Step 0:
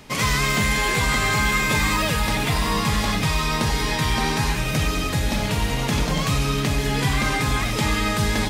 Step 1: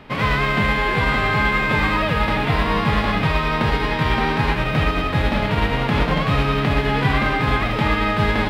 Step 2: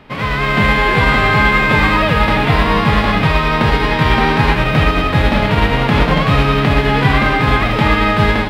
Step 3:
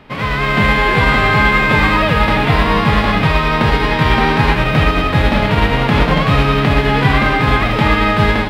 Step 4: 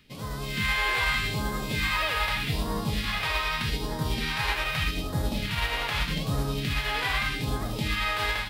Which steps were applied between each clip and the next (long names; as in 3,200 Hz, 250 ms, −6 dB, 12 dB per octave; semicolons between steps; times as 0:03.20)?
spectral envelope flattened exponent 0.6; high-frequency loss of the air 440 metres; level +5.5 dB
automatic gain control
no processing that can be heard
first-order pre-emphasis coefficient 0.8; all-pass phaser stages 2, 0.82 Hz, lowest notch 170–2,400 Hz; level −1.5 dB